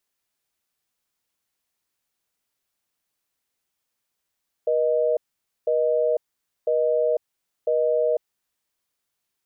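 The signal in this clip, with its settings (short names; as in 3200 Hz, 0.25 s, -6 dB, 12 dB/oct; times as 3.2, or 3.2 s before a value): call progress tone busy tone, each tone -21 dBFS 3.86 s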